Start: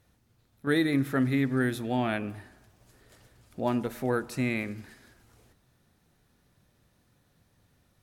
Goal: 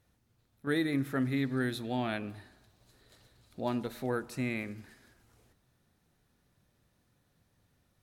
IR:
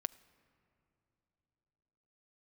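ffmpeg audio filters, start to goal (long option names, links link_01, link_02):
-filter_complex "[0:a]asettb=1/sr,asplit=3[link_01][link_02][link_03];[link_01]atrim=end=1.364[link_04];[link_02]atrim=start=1.36:end=4.07,asetpts=PTS-STARTPTS,afade=type=in:duration=0.004:curve=qsin,afade=type=out:start_time=2.706:duration=0.004:curve=qsin,equalizer=frequency=4000:width_type=o:width=0.32:gain=10.5[link_05];[link_03]atrim=start=4.066[link_06];[link_04][link_05]acrossfade=duration=0.004:curve1=hsin:curve2=qsin[link_07];[link_07][link_06]acrossfade=duration=0.004:curve1=qsin:curve2=hsin,volume=-5dB"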